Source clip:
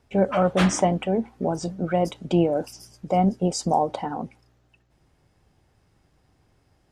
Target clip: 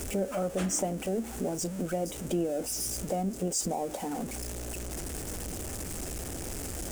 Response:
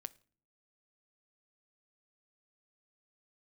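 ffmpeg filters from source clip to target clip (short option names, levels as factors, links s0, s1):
-af "aeval=exprs='val(0)+0.5*0.0398*sgn(val(0))':c=same,acompressor=threshold=0.0355:ratio=2,equalizer=f=125:t=o:w=1:g=-10,equalizer=f=1000:t=o:w=1:g=-10,equalizer=f=2000:t=o:w=1:g=-5,equalizer=f=4000:t=o:w=1:g=-10,equalizer=f=8000:t=o:w=1:g=7"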